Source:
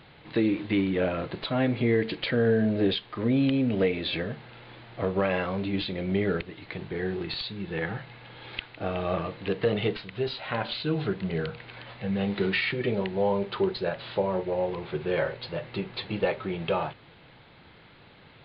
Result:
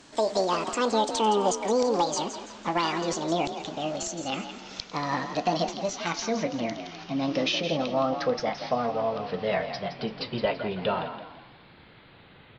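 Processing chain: speed glide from 199% -> 94%; frequency-shifting echo 0.167 s, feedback 38%, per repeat +43 Hz, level -10 dB

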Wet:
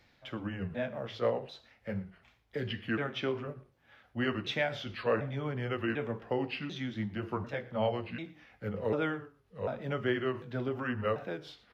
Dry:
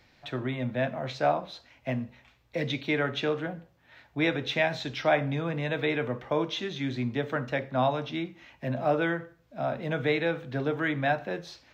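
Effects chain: repeated pitch sweeps -5.5 st, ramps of 0.744 s; echo 0.116 s -21.5 dB; gain -4 dB

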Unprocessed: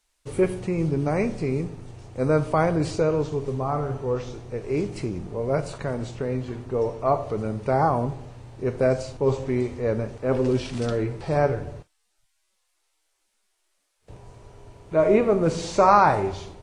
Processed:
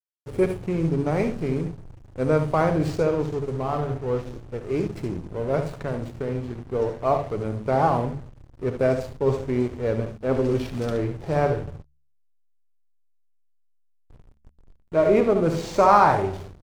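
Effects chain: on a send: early reflections 61 ms -14 dB, 73 ms -9 dB; on the sum: backlash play -32 dBFS; de-hum 71.36 Hz, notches 3

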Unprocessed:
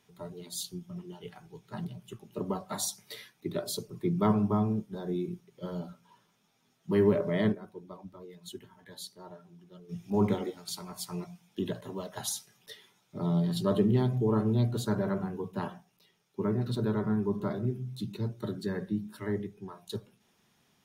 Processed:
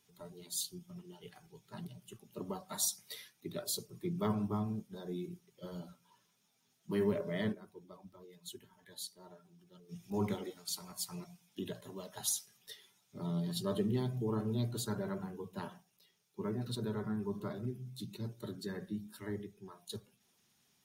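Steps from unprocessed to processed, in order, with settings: bin magnitudes rounded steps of 15 dB; high shelf 3300 Hz +10.5 dB; gain -8 dB

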